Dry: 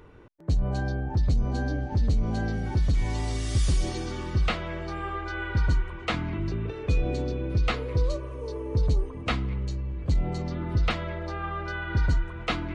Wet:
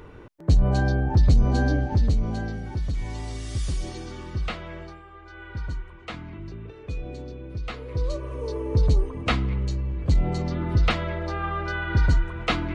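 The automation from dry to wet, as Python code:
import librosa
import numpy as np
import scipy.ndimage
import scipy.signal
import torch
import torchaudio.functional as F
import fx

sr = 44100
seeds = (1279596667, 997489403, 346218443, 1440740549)

y = fx.gain(x, sr, db=fx.line((1.74, 6.5), (2.65, -4.0), (4.83, -4.0), (5.05, -15.0), (5.54, -8.0), (7.67, -8.0), (8.34, 4.0)))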